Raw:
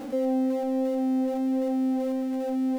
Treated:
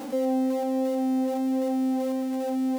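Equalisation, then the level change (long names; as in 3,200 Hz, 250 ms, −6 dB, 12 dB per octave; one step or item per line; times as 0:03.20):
high-pass filter 91 Hz
parametric band 930 Hz +7 dB 0.37 octaves
high-shelf EQ 3,400 Hz +7.5 dB
0.0 dB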